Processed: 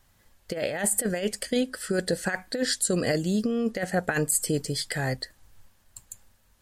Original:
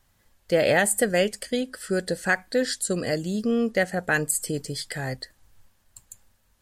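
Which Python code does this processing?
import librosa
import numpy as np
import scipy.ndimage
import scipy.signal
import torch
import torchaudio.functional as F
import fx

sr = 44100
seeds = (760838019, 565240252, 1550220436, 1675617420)

y = fx.over_compress(x, sr, threshold_db=-24.0, ratio=-0.5)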